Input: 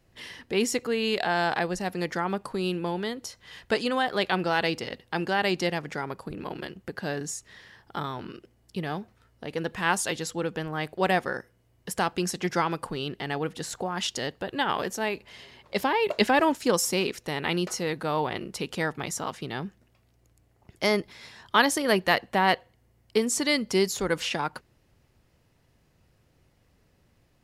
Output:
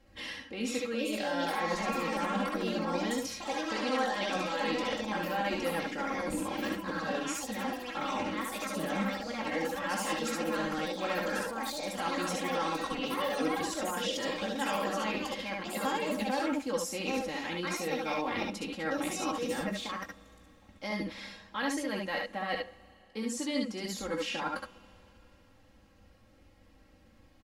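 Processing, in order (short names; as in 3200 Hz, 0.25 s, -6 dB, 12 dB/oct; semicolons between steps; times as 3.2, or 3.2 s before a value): reverse; compressor 5:1, threshold -36 dBFS, peak gain reduction 18.5 dB; reverse; echoes that change speed 0.531 s, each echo +4 st, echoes 3; high shelf 7000 Hz -9.5 dB; comb 3.7 ms, depth 90%; on a send: early reflections 19 ms -8.5 dB, 65 ms -5.5 dB, 75 ms -5 dB; on the sum: Schroeder reverb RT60 3.5 s, combs from 27 ms, DRR 20 dB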